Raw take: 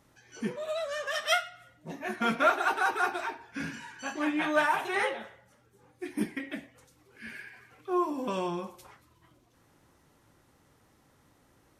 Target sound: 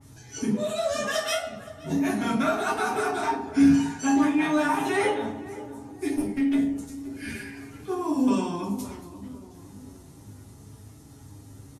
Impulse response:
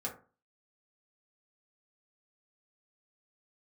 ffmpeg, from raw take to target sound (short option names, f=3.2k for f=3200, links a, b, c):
-filter_complex "[0:a]bass=f=250:g=12,treble=f=4k:g=13,acompressor=threshold=-28dB:ratio=6,asettb=1/sr,asplit=3[a][b][c];[a]atrim=end=6.144[d];[b]atrim=start=6.14:end=6.59,asetpts=PTS-STARTPTS,afade=t=in:d=0.004:c=qsin,afade=t=out:st=0.446:d=0.004:c=qsin,aeval=exprs='(tanh(35.5*val(0)+0.75)-tanh(0.75))/35.5':c=same[e];[c]atrim=start=6.586[f];[d][e]acrossfade=d=0.004:c1=hsin:c2=qsin[g];[g][f]acrossfade=d=0.004:c1=qsin:c2=hsin,flanger=delay=9.2:depth=1.8:regen=39:speed=0.37:shape=sinusoidal,asplit=2[h][i];[i]adelay=520,lowpass=f=880:p=1,volume=-13.5dB,asplit=2[j][k];[k]adelay=520,lowpass=f=880:p=1,volume=0.54,asplit=2[l][m];[m]adelay=520,lowpass=f=880:p=1,volume=0.54,asplit=2[n][o];[o]adelay=520,lowpass=f=880:p=1,volume=0.54,asplit=2[p][q];[q]adelay=520,lowpass=f=880:p=1,volume=0.54[r];[h][j][l][n][p][r]amix=inputs=6:normalize=0[s];[1:a]atrim=start_sample=2205,asetrate=24255,aresample=44100[t];[s][t]afir=irnorm=-1:irlink=0,adynamicequalizer=threshold=0.00355:dfrequency=2800:dqfactor=0.7:tfrequency=2800:tqfactor=0.7:attack=5:release=100:ratio=0.375:range=2:mode=cutabove:tftype=highshelf,volume=5.5dB"